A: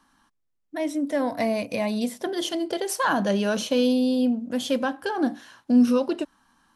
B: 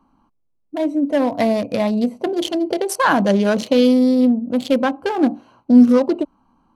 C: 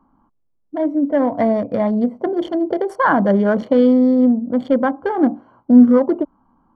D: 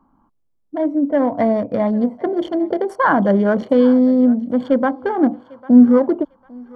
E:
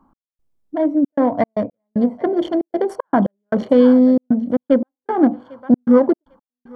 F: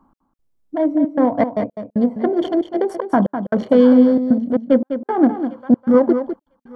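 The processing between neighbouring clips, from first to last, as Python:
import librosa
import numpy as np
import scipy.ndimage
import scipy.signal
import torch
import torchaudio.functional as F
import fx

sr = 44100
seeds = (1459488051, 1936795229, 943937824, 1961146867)

y1 = fx.wiener(x, sr, points=25)
y1 = y1 * 10.0 ** (8.0 / 20.0)
y2 = scipy.signal.savgol_filter(y1, 41, 4, mode='constant')
y2 = y2 * 10.0 ** (1.0 / 20.0)
y3 = fx.echo_thinned(y2, sr, ms=799, feedback_pct=26, hz=590.0, wet_db=-19.5)
y4 = fx.step_gate(y3, sr, bpm=115, pattern='x..xxxxx.xx.', floor_db=-60.0, edge_ms=4.5)
y4 = y4 * 10.0 ** (1.5 / 20.0)
y5 = y4 + 10.0 ** (-9.0 / 20.0) * np.pad(y4, (int(203 * sr / 1000.0), 0))[:len(y4)]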